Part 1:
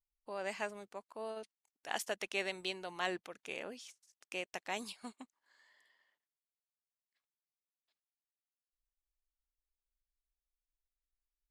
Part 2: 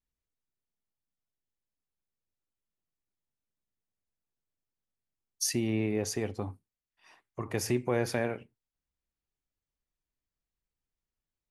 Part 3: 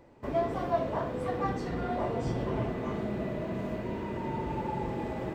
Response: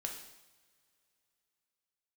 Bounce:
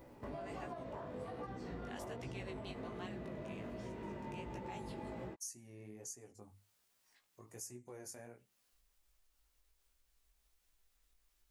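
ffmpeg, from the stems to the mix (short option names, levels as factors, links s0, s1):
-filter_complex "[0:a]acompressor=mode=upward:threshold=0.00282:ratio=2.5,volume=0.841[s0];[1:a]highshelf=f=5000:t=q:w=3:g=13,bandreject=f=50:t=h:w=6,bandreject=f=100:t=h:w=6,bandreject=f=150:t=h:w=6,bandreject=f=200:t=h:w=6,volume=0.126,asplit=2[s1][s2];[2:a]alimiter=level_in=1.41:limit=0.0631:level=0:latency=1:release=238,volume=0.708,volume=1.33[s3];[s2]apad=whole_len=507175[s4];[s0][s4]sidechaincompress=threshold=0.00126:ratio=8:attack=46:release=312[s5];[s5][s1][s3]amix=inputs=3:normalize=0,flanger=delay=15.5:depth=4.8:speed=1.3,acompressor=threshold=0.00447:ratio=2.5"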